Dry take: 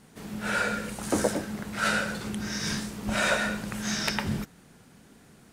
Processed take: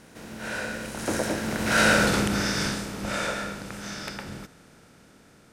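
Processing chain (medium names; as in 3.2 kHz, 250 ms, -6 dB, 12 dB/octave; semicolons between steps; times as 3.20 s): spectral levelling over time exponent 0.6; Doppler pass-by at 1.99 s, 14 m/s, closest 2.9 m; in parallel at +1 dB: peak limiter -24 dBFS, peak gain reduction 10 dB; on the sum: trim +2.5 dB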